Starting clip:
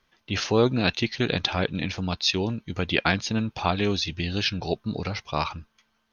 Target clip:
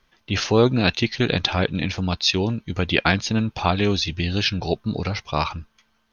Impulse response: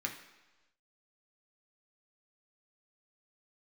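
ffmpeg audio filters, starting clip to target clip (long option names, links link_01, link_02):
-af "lowshelf=frequency=73:gain=6,volume=3.5dB"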